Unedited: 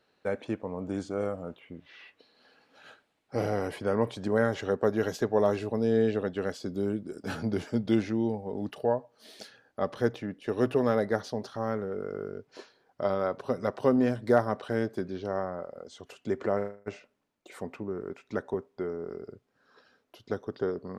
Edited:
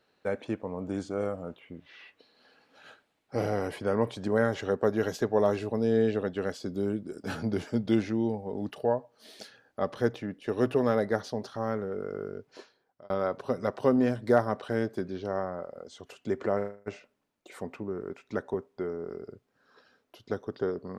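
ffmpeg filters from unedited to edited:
ffmpeg -i in.wav -filter_complex "[0:a]asplit=2[link_01][link_02];[link_01]atrim=end=13.1,asetpts=PTS-STARTPTS,afade=type=out:start_time=12.48:duration=0.62[link_03];[link_02]atrim=start=13.1,asetpts=PTS-STARTPTS,afade=type=in:duration=0.004:curve=hsin[link_04];[link_03][link_04]concat=n=2:v=0:a=1" out.wav

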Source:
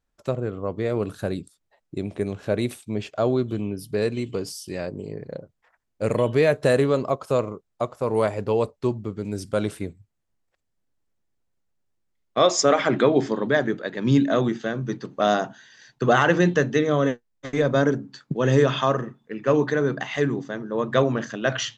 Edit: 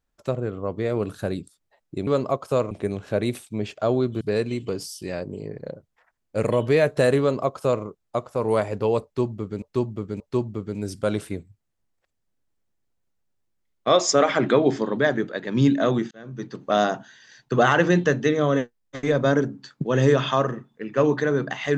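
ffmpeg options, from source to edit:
ffmpeg -i in.wav -filter_complex "[0:a]asplit=7[link_01][link_02][link_03][link_04][link_05][link_06][link_07];[link_01]atrim=end=2.072[link_08];[link_02]atrim=start=6.858:end=7.502[link_09];[link_03]atrim=start=2.068:end=3.572[link_10];[link_04]atrim=start=3.868:end=9.282[link_11];[link_05]atrim=start=8.698:end=9.282[link_12];[link_06]atrim=start=8.698:end=14.61,asetpts=PTS-STARTPTS,afade=type=out:start_time=5.908:duration=0.004:curve=hsin[link_13];[link_07]atrim=start=14.61,asetpts=PTS-STARTPTS,afade=type=in:duration=0.51[link_14];[link_08][link_09]acrossfade=duration=0.004:curve1=hsin:curve2=hsin[link_15];[link_15][link_10]acrossfade=duration=0.004:curve1=hsin:curve2=hsin[link_16];[link_16][link_11]acrossfade=duration=0.004:curve1=hsin:curve2=hsin[link_17];[link_17][link_12]acrossfade=duration=0.004:curve1=hsin:curve2=hsin[link_18];[link_13][link_14]concat=n=2:v=0:a=1[link_19];[link_18][link_19]acrossfade=duration=0.004:curve1=hsin:curve2=hsin" out.wav

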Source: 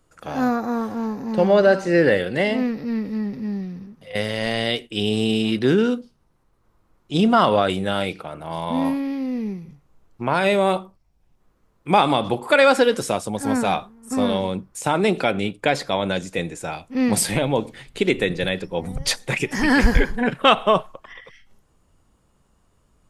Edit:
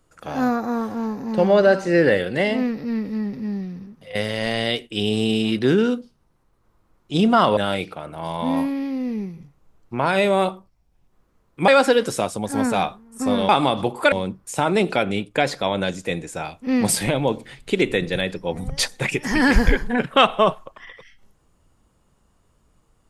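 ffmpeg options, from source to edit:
ffmpeg -i in.wav -filter_complex "[0:a]asplit=5[link_01][link_02][link_03][link_04][link_05];[link_01]atrim=end=7.572[link_06];[link_02]atrim=start=7.848:end=11.962[link_07];[link_03]atrim=start=12.588:end=14.402[link_08];[link_04]atrim=start=11.958:end=12.592[link_09];[link_05]atrim=start=14.398[link_10];[link_06][link_07]acrossfade=duration=0.004:curve1=hsin:curve2=hsin[link_11];[link_11][link_08]acrossfade=duration=0.004:curve1=hsin:curve2=hsin[link_12];[link_12][link_09]acrossfade=duration=0.004:curve1=hsin:curve2=hsin[link_13];[link_13][link_10]acrossfade=duration=0.004:curve1=hsin:curve2=hsin" out.wav

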